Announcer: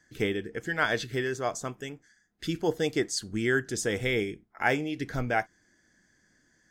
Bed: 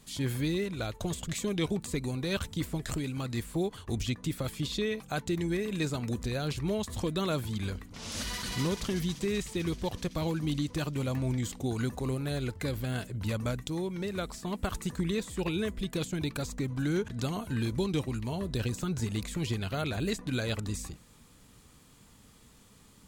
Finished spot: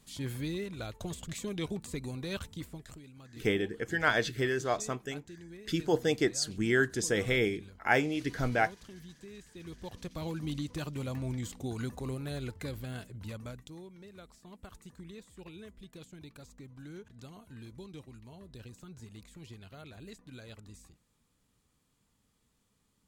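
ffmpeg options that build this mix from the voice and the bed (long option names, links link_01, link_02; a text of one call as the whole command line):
ffmpeg -i stem1.wav -i stem2.wav -filter_complex "[0:a]adelay=3250,volume=-0.5dB[link_01];[1:a]volume=7.5dB,afade=type=out:start_time=2.32:duration=0.68:silence=0.237137,afade=type=in:start_time=9.5:duration=0.9:silence=0.223872,afade=type=out:start_time=12.45:duration=1.52:silence=0.251189[link_02];[link_01][link_02]amix=inputs=2:normalize=0" out.wav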